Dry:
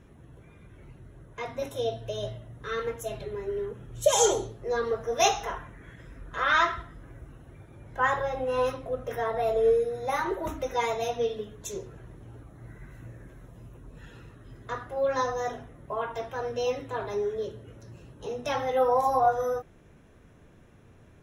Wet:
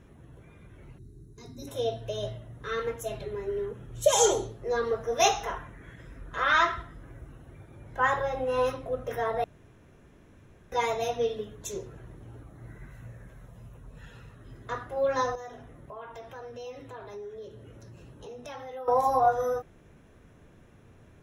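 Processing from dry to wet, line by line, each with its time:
0.98–1.68 spectral gain 440–3700 Hz -20 dB
9.44–10.72 room tone
12.88–14.38 bell 320 Hz -11 dB 0.45 oct
15.35–18.88 compressor 2.5:1, threshold -44 dBFS

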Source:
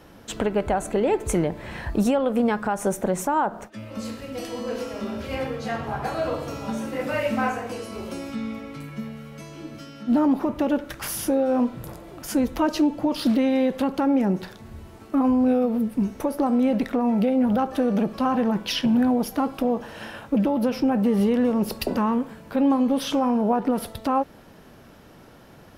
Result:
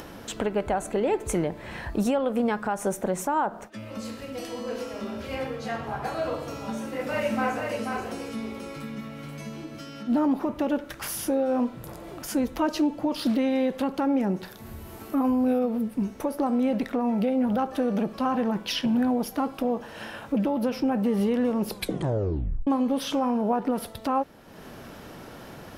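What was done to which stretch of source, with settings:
6.58–9.64 echo 0.485 s -4.5 dB
14.45–15.59 bell 13000 Hz +14.5 dB 0.53 oct
21.69 tape stop 0.98 s
whole clip: low shelf 180 Hz -3.5 dB; upward compressor, threshold -30 dBFS; gain -2.5 dB

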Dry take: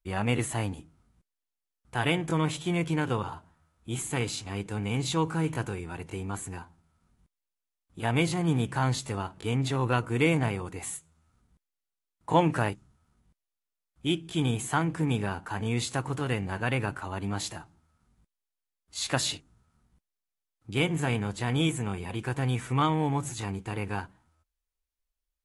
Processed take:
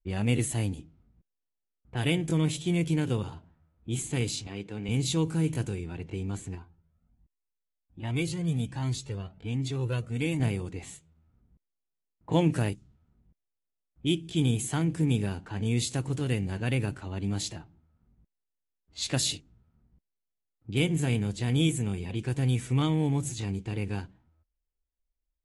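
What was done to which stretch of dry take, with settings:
4.47–4.89 HPF 290 Hz 6 dB/oct
6.55–10.4 cascading flanger rising 1.3 Hz
whole clip: bell 1200 Hz -11.5 dB 1.7 oct; low-pass opened by the level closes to 1500 Hz, open at -27.5 dBFS; dynamic EQ 880 Hz, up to -4 dB, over -48 dBFS, Q 0.93; gain +3 dB

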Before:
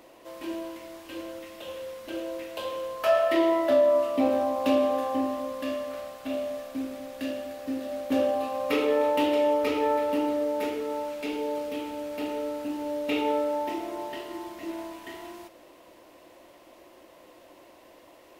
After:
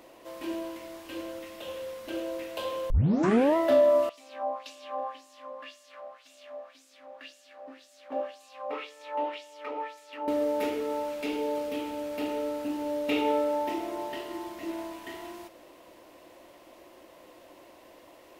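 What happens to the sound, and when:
2.9 tape start 0.66 s
4.09–10.28 LFO band-pass sine 1.9 Hz 720–7600 Hz

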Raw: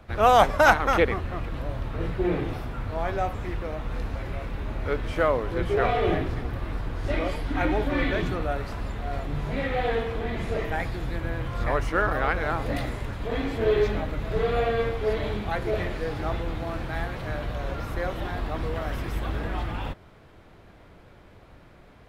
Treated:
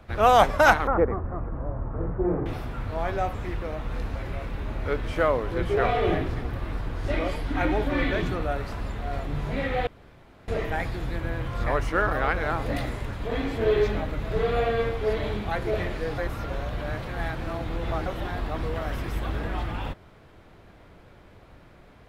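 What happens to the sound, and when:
0.87–2.46 LPF 1300 Hz 24 dB/oct
9.87–10.48 room tone
16.18–18.06 reverse

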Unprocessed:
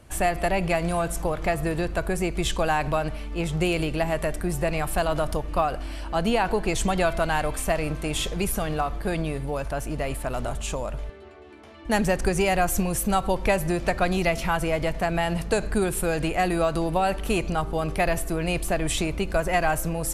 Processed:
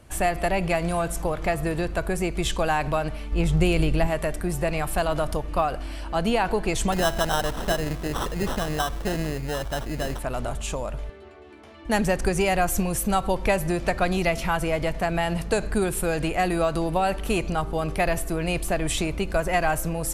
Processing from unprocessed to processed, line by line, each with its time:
3.32–4.07 low shelf 140 Hz +11 dB
6.92–10.19 sample-rate reducer 2300 Hz

